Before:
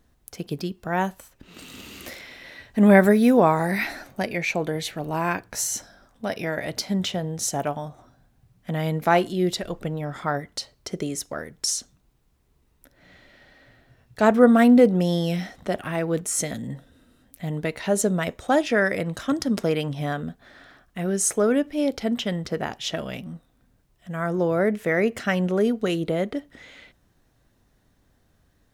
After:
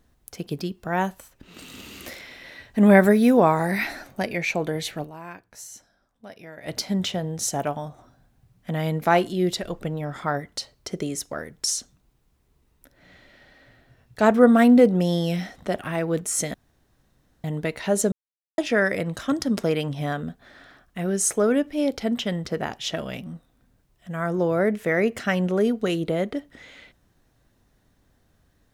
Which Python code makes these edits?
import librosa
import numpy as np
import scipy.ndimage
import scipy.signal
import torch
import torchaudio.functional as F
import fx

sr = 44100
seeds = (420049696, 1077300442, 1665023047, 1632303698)

y = fx.edit(x, sr, fx.fade_down_up(start_s=5.03, length_s=1.66, db=-14.5, fade_s=0.29, curve='exp'),
    fx.room_tone_fill(start_s=16.54, length_s=0.9),
    fx.silence(start_s=18.12, length_s=0.46), tone=tone)